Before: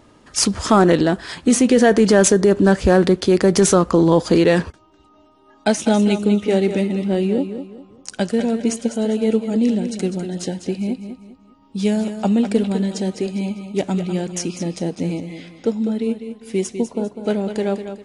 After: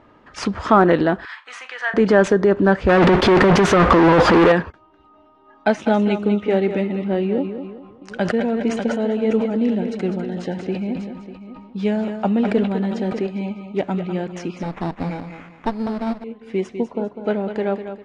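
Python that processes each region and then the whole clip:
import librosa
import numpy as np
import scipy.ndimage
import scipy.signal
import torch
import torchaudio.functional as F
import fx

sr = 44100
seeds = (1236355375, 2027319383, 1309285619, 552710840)

y = fx.chain(x, sr, fx.highpass(hz=1100.0, slope=24),
    fx.tilt_eq(slope=-2.0),
    fx.room_flutter(wall_m=6.9, rt60_s=0.21), at=(1.25, 1.94))
y = fx.chain(y, sr, fx.over_compress(threshold_db=-18.0, ratio=-0.5),
    fx.leveller(passes=5),
    fx.overload_stage(gain_db=9.0), at=(2.89, 4.52))
y = fx.chain(y, sr, fx.echo_single(ms=596, db=-14.0),
    fx.sustainer(db_per_s=53.0), at=(7.42, 13.27))
y = fx.chain(y, sr, fx.lower_of_two(delay_ms=0.9),
    fx.sample_hold(seeds[0], rate_hz=4600.0, jitter_pct=0), at=(14.63, 16.24))
y = scipy.signal.sosfilt(scipy.signal.butter(2, 1800.0, 'lowpass', fs=sr, output='sos'), y)
y = fx.tilt_shelf(y, sr, db=-4.5, hz=650.0)
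y = y * librosa.db_to_amplitude(1.0)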